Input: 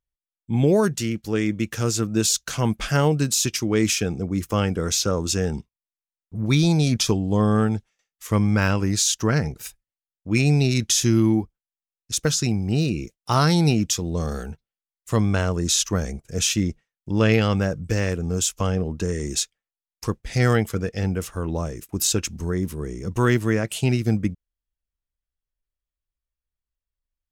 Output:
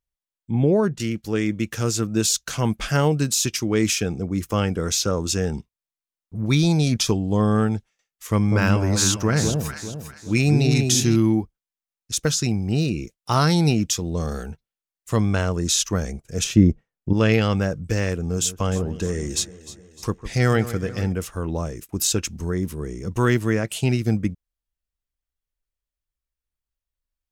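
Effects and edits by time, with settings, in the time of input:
0.51–1.00 s: low-pass 1.3 kHz 6 dB/octave
8.27–11.16 s: echo whose repeats swap between lows and highs 200 ms, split 900 Hz, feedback 57%, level -3 dB
16.44–17.13 s: tilt shelf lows +9 dB, about 1.4 kHz
18.21–21.13 s: echo whose repeats swap between lows and highs 152 ms, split 1.8 kHz, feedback 71%, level -13.5 dB

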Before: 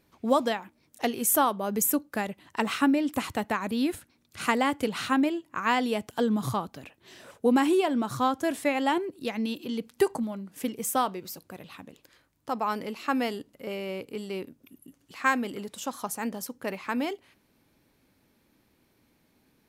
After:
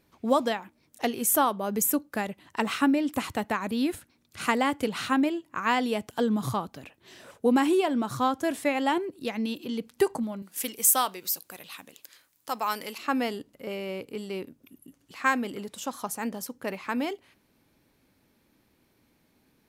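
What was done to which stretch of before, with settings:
10.42–12.98 s: tilt EQ +3.5 dB/octave

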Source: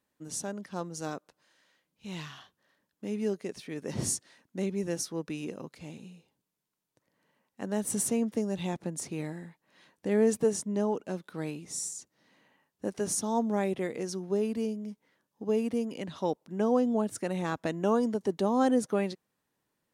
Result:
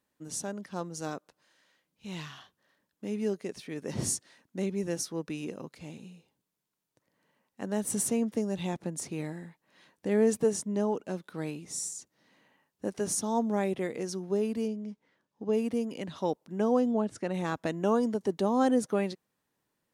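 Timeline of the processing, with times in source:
14.68–15.53 s: distance through air 67 m
16.91–17.34 s: distance through air 83 m

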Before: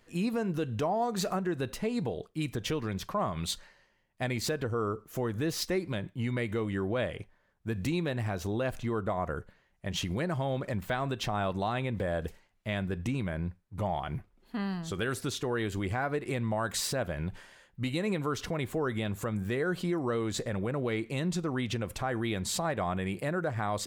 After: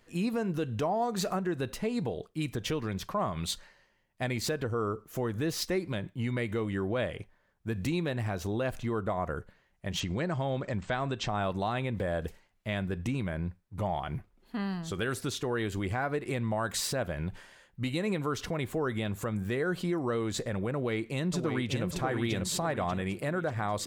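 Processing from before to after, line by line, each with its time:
10.00–11.40 s: brick-wall FIR low-pass 8.5 kHz
20.74–21.84 s: echo throw 590 ms, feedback 45%, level -5.5 dB

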